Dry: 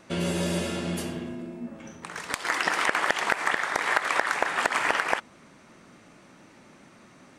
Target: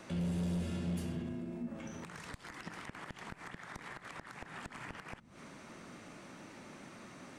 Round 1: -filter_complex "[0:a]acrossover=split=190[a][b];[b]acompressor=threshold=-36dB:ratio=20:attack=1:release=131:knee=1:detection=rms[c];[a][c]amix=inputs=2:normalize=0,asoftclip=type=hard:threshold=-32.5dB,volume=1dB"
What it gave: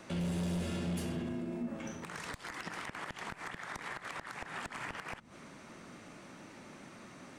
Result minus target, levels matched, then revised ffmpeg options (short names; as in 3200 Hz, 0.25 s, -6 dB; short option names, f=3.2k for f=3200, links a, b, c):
compressor: peak gain reduction -5.5 dB
-filter_complex "[0:a]acrossover=split=190[a][b];[b]acompressor=threshold=-42dB:ratio=20:attack=1:release=131:knee=1:detection=rms[c];[a][c]amix=inputs=2:normalize=0,asoftclip=type=hard:threshold=-32.5dB,volume=1dB"